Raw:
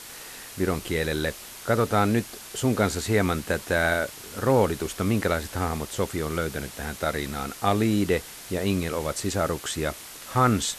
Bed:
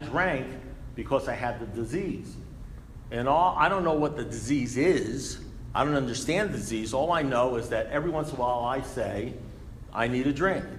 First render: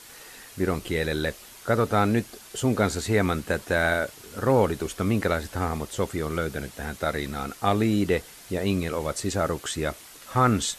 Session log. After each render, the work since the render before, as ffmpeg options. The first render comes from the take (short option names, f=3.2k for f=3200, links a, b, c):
-af "afftdn=nr=6:nf=-42"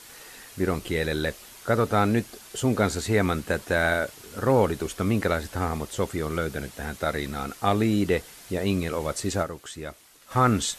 -filter_complex "[0:a]asplit=3[a][b][c];[a]atrim=end=9.59,asetpts=PTS-STARTPTS,afade=t=out:st=9.42:d=0.17:c=exp:silence=0.375837[d];[b]atrim=start=9.59:end=10.15,asetpts=PTS-STARTPTS,volume=-8.5dB[e];[c]atrim=start=10.15,asetpts=PTS-STARTPTS,afade=t=in:d=0.17:c=exp:silence=0.375837[f];[d][e][f]concat=n=3:v=0:a=1"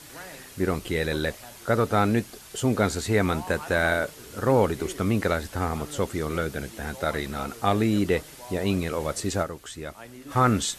-filter_complex "[1:a]volume=-17.5dB[a];[0:a][a]amix=inputs=2:normalize=0"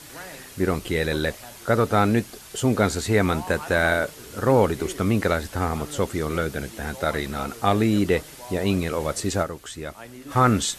-af "volume=2.5dB"